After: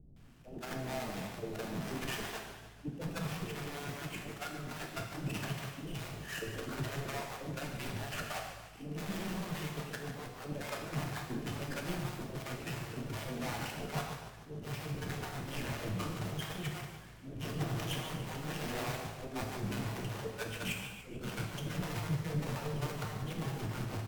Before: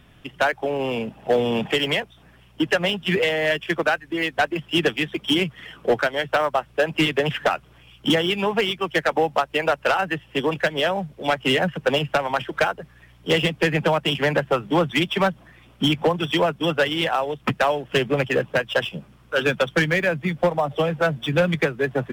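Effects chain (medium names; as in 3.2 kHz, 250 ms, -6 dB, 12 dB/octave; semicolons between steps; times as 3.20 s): square wave that keeps the level; bass shelf 120 Hz +7 dB; slow attack 229 ms; compression 6:1, threshold -22 dBFS, peak gain reduction 9.5 dB; sine folder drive 18 dB, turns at -13.5 dBFS; gate -12 dBFS, range -53 dB; bands offset in time lows, highs 150 ms, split 590 Hz; gated-style reverb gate 320 ms falling, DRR 1 dB; speed mistake 48 kHz file played as 44.1 kHz; modulated delay 146 ms, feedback 55%, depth 201 cents, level -12 dB; trim +16.5 dB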